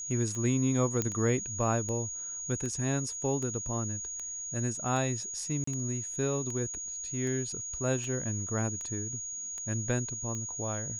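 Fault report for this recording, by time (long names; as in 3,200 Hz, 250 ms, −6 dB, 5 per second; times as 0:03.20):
scratch tick 78 rpm −26 dBFS
whistle 6,700 Hz −36 dBFS
0:01.02: click −15 dBFS
0:05.64–0:05.67: drop-out 34 ms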